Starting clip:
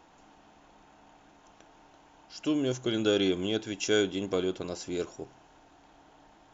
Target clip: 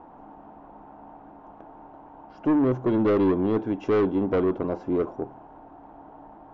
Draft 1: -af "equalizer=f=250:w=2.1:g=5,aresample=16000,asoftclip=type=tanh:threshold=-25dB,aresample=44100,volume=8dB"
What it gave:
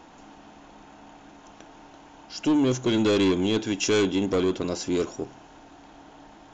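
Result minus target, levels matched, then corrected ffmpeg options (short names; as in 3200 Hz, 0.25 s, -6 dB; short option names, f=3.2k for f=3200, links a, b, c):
1000 Hz band -2.5 dB
-af "lowpass=f=920:t=q:w=1.6,equalizer=f=250:w=2.1:g=5,aresample=16000,asoftclip=type=tanh:threshold=-25dB,aresample=44100,volume=8dB"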